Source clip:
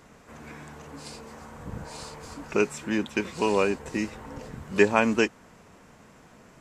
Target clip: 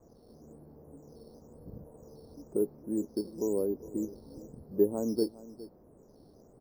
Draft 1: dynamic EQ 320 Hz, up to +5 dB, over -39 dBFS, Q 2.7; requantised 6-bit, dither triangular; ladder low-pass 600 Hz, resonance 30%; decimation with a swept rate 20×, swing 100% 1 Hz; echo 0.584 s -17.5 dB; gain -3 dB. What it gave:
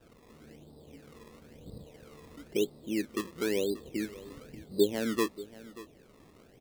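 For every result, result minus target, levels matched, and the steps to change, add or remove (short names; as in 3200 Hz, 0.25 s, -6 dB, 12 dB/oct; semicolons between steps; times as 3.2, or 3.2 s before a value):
echo 0.175 s late; decimation with a swept rate: distortion +12 dB
change: echo 0.409 s -17.5 dB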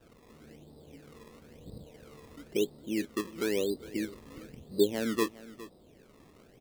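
decimation with a swept rate: distortion +12 dB
change: decimation with a swept rate 6×, swing 100% 1 Hz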